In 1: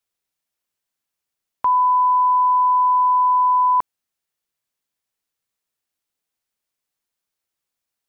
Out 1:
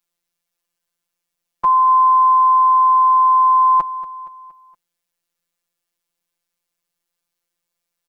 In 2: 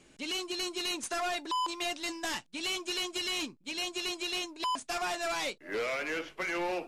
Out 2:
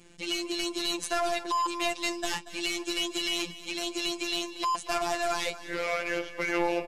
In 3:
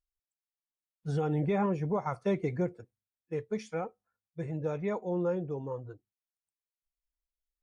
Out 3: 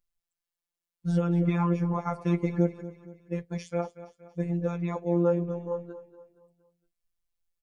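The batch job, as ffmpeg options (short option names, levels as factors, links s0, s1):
-filter_complex "[0:a]lowshelf=f=120:g=6.5,afftfilt=real='hypot(re,im)*cos(PI*b)':imag='0':win_size=1024:overlap=0.75,asplit=2[s0][s1];[s1]aecho=0:1:234|468|702|936:0.168|0.0789|0.0371|0.0174[s2];[s0][s2]amix=inputs=2:normalize=0,volume=2"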